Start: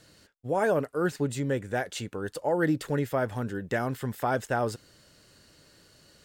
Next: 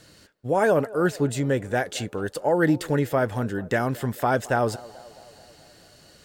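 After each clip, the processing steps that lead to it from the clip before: band-passed feedback delay 217 ms, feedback 66%, band-pass 640 Hz, level -19 dB; trim +5 dB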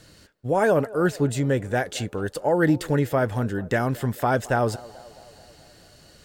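bass shelf 88 Hz +8 dB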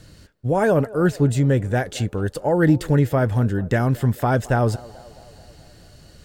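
bass shelf 190 Hz +11 dB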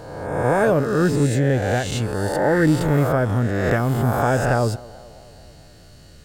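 reverse spectral sustain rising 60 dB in 1.30 s; trim -2 dB

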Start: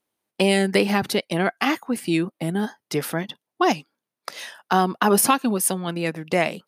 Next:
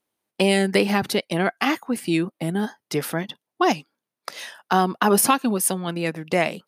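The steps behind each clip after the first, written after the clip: no audible change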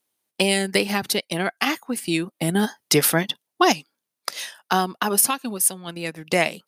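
treble shelf 2.8 kHz +10 dB; transient shaper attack +2 dB, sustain -3 dB; level rider; trim -2.5 dB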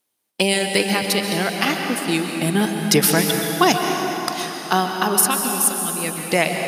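plate-style reverb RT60 4.1 s, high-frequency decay 0.7×, pre-delay 115 ms, DRR 2.5 dB; trim +1.5 dB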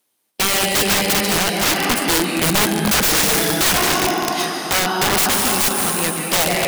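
tracing distortion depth 0.19 ms; high-pass 110 Hz 6 dB/octave; integer overflow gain 16 dB; trim +5.5 dB

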